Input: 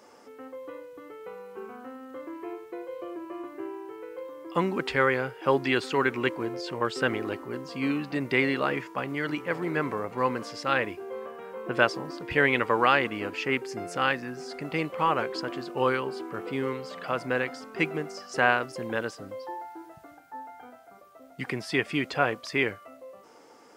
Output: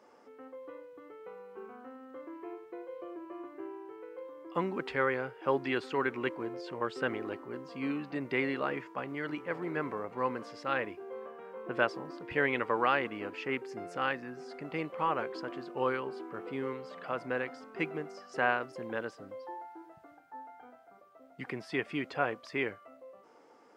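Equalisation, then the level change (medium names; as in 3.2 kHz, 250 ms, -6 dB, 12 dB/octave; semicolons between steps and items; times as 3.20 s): bass shelf 110 Hz -9.5 dB; treble shelf 3.8 kHz -12 dB; -5.0 dB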